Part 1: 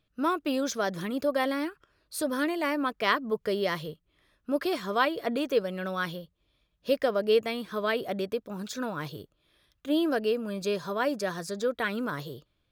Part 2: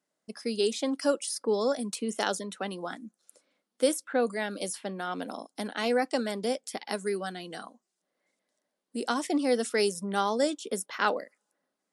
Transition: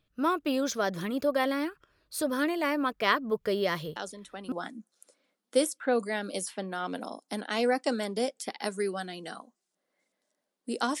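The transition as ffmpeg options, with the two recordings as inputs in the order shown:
-filter_complex "[1:a]asplit=2[a][b];[0:a]apad=whole_dur=11,atrim=end=11,atrim=end=4.522[c];[b]atrim=start=2.788:end=9.27[d];[a]atrim=start=2.23:end=2.79,asetpts=PTS-STARTPTS,volume=-8dB,afade=t=in:d=0.004:c=hsin,afade=t=out:st=0.556:d=0.004:c=hsin,adelay=3960[e];[c][d]acrossfade=d=0.004:c1=hsin:c2=hsin[f];[f][e]amix=inputs=2:normalize=0"

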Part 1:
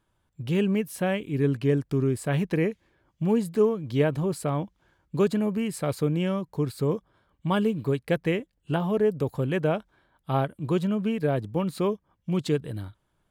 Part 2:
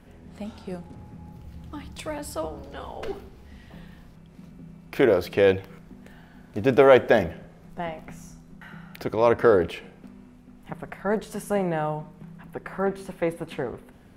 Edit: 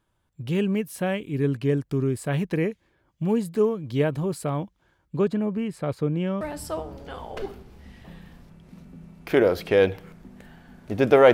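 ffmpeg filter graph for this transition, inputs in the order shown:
-filter_complex "[0:a]asettb=1/sr,asplit=3[a][b][c];[a]atrim=end=5.174[d];[b]atrim=start=5.17:end=6.41,asetpts=PTS-STARTPTS,afade=t=in:d=0.004:c=qsin,afade=t=out:st=1.236:d=0.004:c=qsin,lowpass=f=2.1k:p=1[e];[c]atrim=start=6.406[f];[d][e]acrossfade=d=0.004:c1=hsin:c2=qsin[g];[g][f]acrossfade=d=0.004:c1=qsin:c2=hsin,apad=whole_dur=11.33,atrim=end=11.33,atrim=end=6.412[h];[1:a]atrim=start=2.068:end=6.99[i];[h][i]acrossfade=d=0.004:c1=hsin:c2=hsin"

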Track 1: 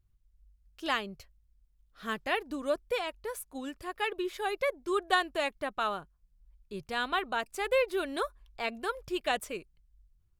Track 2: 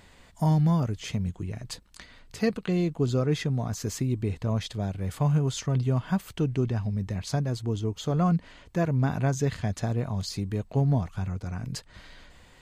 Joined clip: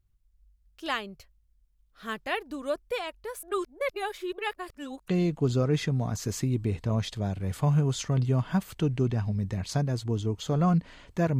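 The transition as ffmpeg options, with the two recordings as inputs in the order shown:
-filter_complex "[0:a]apad=whole_dur=11.39,atrim=end=11.39,asplit=2[a][b];[a]atrim=end=3.432[c];[b]atrim=start=3.428:end=5.082,asetpts=PTS-STARTPTS,areverse[d];[1:a]atrim=start=2.658:end=8.97[e];[c][d]acrossfade=d=0.004:c1=hsin:c2=hsin[f];[f][e]acrossfade=d=0.004:c1=hsin:c2=hsin"

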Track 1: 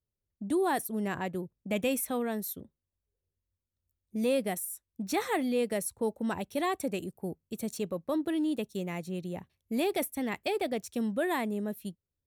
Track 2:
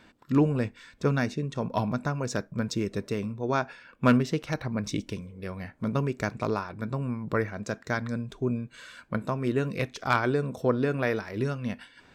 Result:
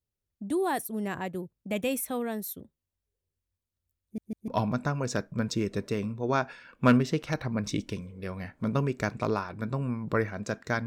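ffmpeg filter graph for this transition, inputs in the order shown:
-filter_complex "[0:a]apad=whole_dur=10.86,atrim=end=10.86,asplit=3[a][b][c];[a]atrim=end=4.182[d];[b]atrim=start=4.028:end=4.182[e];[c]atrim=start=4.028:end=4.182[f];[1:a]atrim=start=1.678:end=8.06[g];[d][e]acrossfade=d=0.004:c1=hsin:c2=hsin[h];[h][f]acrossfade=d=0.004:c1=hsin:c2=hsin[i];[i][g]acrossfade=d=0.004:c1=hsin:c2=hsin"

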